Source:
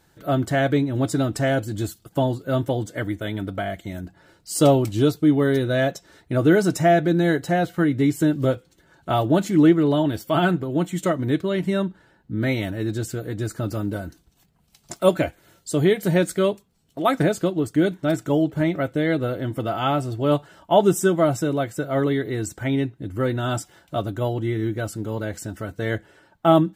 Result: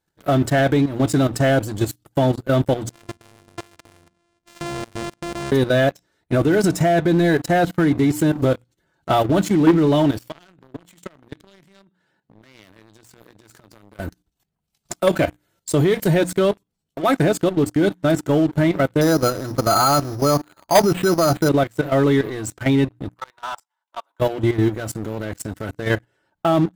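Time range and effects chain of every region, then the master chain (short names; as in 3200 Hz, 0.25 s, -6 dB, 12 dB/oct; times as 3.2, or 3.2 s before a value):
2.91–5.52 sample sorter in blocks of 128 samples + brick-wall FIR low-pass 10000 Hz + compressor 3:1, threshold -37 dBFS
10.22–14 HPF 100 Hz 24 dB/oct + bell 4100 Hz +5 dB 2.8 oct + compressor 10:1, threshold -34 dBFS
19.01–21.49 resonant high shelf 1800 Hz -10 dB, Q 3 + careless resampling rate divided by 8×, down none, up hold
23.08–24.2 G.711 law mismatch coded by A + ladder high-pass 880 Hz, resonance 75% + high shelf 7300 Hz -4.5 dB
whole clip: notches 60/120/180/240/300 Hz; level quantiser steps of 12 dB; sample leveller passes 3; gain -2 dB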